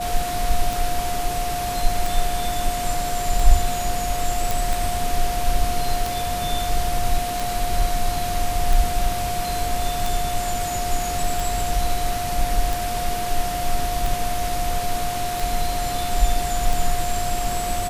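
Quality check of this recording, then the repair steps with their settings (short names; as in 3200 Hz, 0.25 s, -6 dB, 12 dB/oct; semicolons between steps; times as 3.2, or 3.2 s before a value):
tick 45 rpm
tone 710 Hz -25 dBFS
4.51 pop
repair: de-click; notch 710 Hz, Q 30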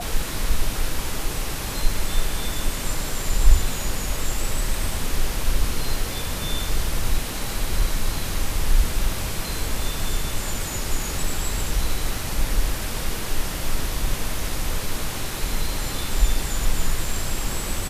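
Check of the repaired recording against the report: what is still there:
none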